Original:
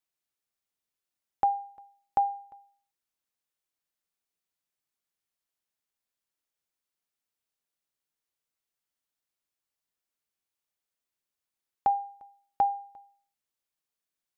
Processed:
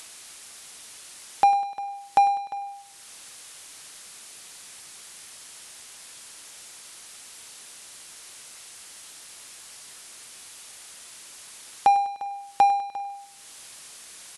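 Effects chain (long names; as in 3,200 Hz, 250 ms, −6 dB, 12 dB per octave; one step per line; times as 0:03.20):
high-pass filter 50 Hz 24 dB per octave
spectral tilt +2 dB per octave
in parallel at −0.5 dB: upward compression, threshold −28 dBFS
on the sum: power curve on the samples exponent 0.7
on a send: repeating echo 100 ms, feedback 57%, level −16.5 dB
on the sum: AAC 96 kbit/s 24,000 Hz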